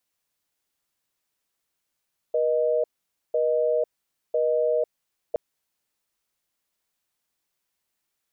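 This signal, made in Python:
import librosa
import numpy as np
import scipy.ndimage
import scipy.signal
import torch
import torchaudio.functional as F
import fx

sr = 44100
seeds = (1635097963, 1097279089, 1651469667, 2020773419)

y = fx.call_progress(sr, length_s=3.02, kind='busy tone', level_db=-22.5)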